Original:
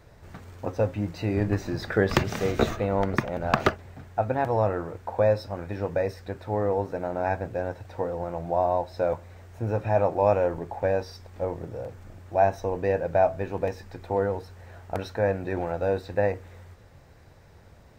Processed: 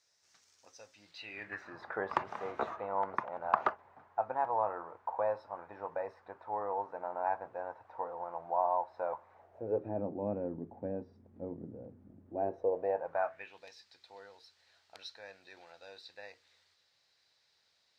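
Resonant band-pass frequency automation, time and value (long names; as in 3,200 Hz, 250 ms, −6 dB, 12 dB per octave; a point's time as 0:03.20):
resonant band-pass, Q 3.1
0:00.92 5,700 Hz
0:01.84 980 Hz
0:09.32 980 Hz
0:10.03 240 Hz
0:12.24 240 Hz
0:13.20 1,200 Hz
0:13.62 4,300 Hz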